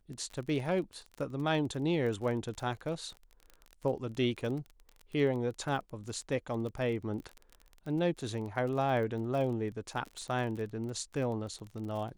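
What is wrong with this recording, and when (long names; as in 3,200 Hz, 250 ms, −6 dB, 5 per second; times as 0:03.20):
surface crackle 30 per second −38 dBFS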